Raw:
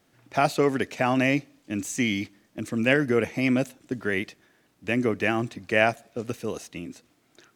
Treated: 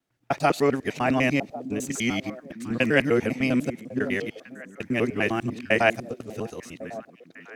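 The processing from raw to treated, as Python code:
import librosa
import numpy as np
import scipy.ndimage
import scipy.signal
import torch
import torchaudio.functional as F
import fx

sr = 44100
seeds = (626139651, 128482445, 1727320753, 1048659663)

y = fx.local_reverse(x, sr, ms=100.0)
y = fx.echo_stepped(y, sr, ms=550, hz=210.0, octaves=1.4, feedback_pct=70, wet_db=-6.5)
y = fx.band_widen(y, sr, depth_pct=40)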